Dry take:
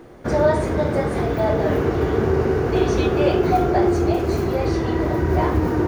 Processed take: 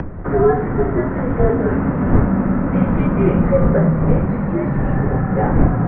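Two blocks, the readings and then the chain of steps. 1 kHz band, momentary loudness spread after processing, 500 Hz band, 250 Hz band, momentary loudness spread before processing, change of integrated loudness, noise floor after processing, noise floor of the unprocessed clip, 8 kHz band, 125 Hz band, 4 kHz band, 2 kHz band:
-0.5 dB, 4 LU, 0.0 dB, +5.0 dB, 3 LU, +2.5 dB, -22 dBFS, -24 dBFS, under -35 dB, +6.0 dB, under -15 dB, 0.0 dB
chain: wind noise 160 Hz -16 dBFS; mistuned SSB -190 Hz 200–2200 Hz; upward compressor, threshold -25 dBFS; gain +3.5 dB

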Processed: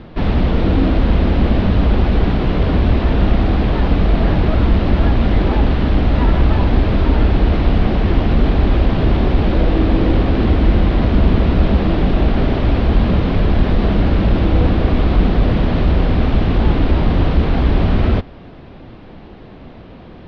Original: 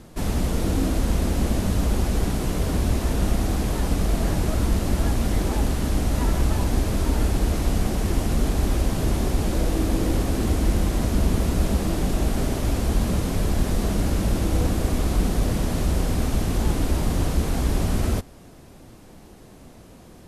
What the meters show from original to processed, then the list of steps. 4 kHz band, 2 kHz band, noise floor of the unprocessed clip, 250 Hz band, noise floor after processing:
+5.0 dB, +8.5 dB, -46 dBFS, +8.5 dB, -37 dBFS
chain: inverse Chebyshev low-pass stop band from 7000 Hz, stop band 40 dB; in parallel at -10 dB: soft clip -21 dBFS, distortion -11 dB; on the sum: gain +7 dB

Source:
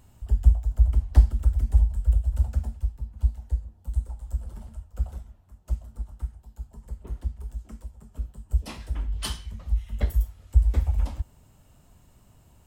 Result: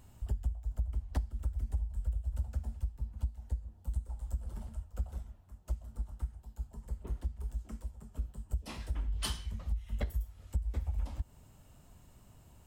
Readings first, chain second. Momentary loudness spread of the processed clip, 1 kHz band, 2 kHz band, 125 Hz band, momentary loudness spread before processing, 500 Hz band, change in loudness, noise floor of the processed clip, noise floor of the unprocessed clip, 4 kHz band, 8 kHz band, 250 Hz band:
8 LU, -6.0 dB, -5.0 dB, -11.5 dB, 18 LU, -6.0 dB, -12.5 dB, -59 dBFS, -57 dBFS, -4.5 dB, -4.5 dB, -6.0 dB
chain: compressor 8:1, threshold -28 dBFS, peak gain reduction 18.5 dB; gain -2 dB

